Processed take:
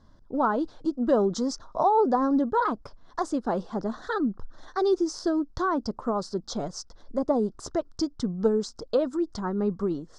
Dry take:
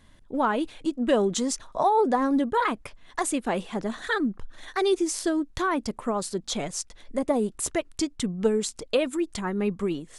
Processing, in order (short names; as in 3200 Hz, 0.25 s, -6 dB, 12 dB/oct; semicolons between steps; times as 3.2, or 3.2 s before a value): EQ curve 1400 Hz 0 dB, 2400 Hz -24 dB, 5100 Hz +1 dB, 11000 Hz -29 dB